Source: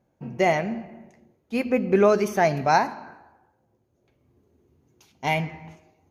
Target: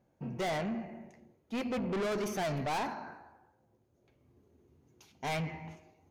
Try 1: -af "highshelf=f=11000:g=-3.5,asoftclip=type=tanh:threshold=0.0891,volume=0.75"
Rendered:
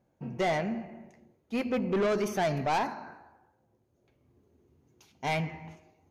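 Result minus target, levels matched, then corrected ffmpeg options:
saturation: distortion -4 dB
-af "highshelf=f=11000:g=-3.5,asoftclip=type=tanh:threshold=0.0376,volume=0.75"

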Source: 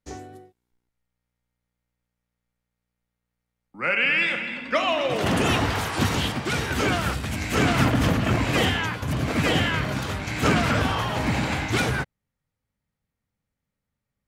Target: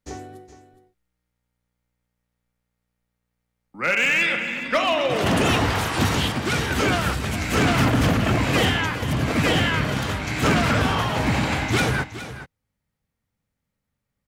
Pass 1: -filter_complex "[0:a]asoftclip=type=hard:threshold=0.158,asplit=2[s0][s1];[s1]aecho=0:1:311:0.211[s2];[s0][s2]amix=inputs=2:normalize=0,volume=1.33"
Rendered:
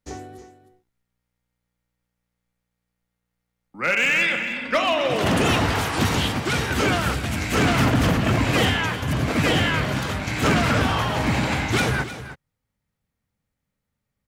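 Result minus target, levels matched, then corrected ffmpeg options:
echo 106 ms early
-filter_complex "[0:a]asoftclip=type=hard:threshold=0.158,asplit=2[s0][s1];[s1]aecho=0:1:417:0.211[s2];[s0][s2]amix=inputs=2:normalize=0,volume=1.33"

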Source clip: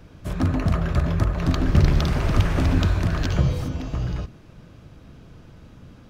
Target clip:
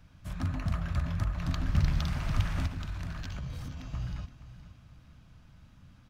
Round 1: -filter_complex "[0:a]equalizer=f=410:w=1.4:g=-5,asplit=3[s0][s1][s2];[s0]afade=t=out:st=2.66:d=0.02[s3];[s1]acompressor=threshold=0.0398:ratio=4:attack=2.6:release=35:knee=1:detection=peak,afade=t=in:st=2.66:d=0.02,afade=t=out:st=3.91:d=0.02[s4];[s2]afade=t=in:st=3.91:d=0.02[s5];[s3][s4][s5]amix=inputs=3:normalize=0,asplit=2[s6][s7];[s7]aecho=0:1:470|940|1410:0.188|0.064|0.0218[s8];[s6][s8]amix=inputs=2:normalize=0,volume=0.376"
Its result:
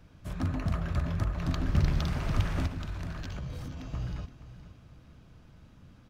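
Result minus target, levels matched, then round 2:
500 Hz band +5.0 dB
-filter_complex "[0:a]equalizer=f=410:w=1.4:g=-16,asplit=3[s0][s1][s2];[s0]afade=t=out:st=2.66:d=0.02[s3];[s1]acompressor=threshold=0.0398:ratio=4:attack=2.6:release=35:knee=1:detection=peak,afade=t=in:st=2.66:d=0.02,afade=t=out:st=3.91:d=0.02[s4];[s2]afade=t=in:st=3.91:d=0.02[s5];[s3][s4][s5]amix=inputs=3:normalize=0,asplit=2[s6][s7];[s7]aecho=0:1:470|940|1410:0.188|0.064|0.0218[s8];[s6][s8]amix=inputs=2:normalize=0,volume=0.376"

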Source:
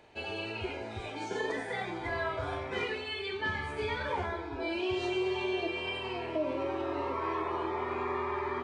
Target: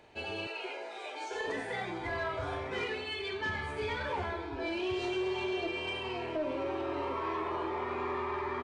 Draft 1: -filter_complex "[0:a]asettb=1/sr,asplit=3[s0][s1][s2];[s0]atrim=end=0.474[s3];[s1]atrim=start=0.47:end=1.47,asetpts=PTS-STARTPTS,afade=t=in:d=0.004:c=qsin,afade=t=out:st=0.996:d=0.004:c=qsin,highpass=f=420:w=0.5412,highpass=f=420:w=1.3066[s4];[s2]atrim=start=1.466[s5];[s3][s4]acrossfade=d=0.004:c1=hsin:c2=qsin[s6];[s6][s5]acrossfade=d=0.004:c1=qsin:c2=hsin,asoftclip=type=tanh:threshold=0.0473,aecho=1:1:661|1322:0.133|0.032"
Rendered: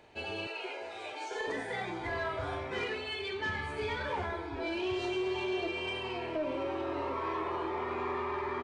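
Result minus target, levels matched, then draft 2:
echo 492 ms early
-filter_complex "[0:a]asettb=1/sr,asplit=3[s0][s1][s2];[s0]atrim=end=0.474[s3];[s1]atrim=start=0.47:end=1.47,asetpts=PTS-STARTPTS,afade=t=in:d=0.004:c=qsin,afade=t=out:st=0.996:d=0.004:c=qsin,highpass=f=420:w=0.5412,highpass=f=420:w=1.3066[s4];[s2]atrim=start=1.466[s5];[s3][s4]acrossfade=d=0.004:c1=hsin:c2=qsin[s6];[s6][s5]acrossfade=d=0.004:c1=qsin:c2=hsin,asoftclip=type=tanh:threshold=0.0473,aecho=1:1:1153|2306:0.133|0.032"

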